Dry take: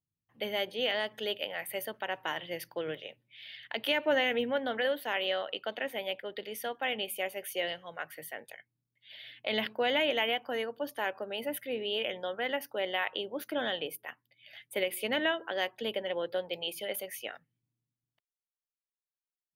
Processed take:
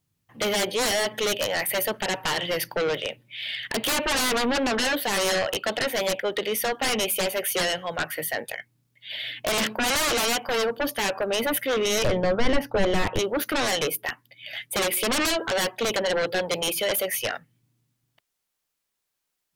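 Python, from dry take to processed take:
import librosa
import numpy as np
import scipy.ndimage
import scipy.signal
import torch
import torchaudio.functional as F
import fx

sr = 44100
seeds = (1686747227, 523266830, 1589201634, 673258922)

y = fx.fold_sine(x, sr, drive_db=16, ceiling_db=-16.5)
y = fx.riaa(y, sr, side='playback', at=(12.04, 13.19))
y = y * 10.0 ** (-4.0 / 20.0)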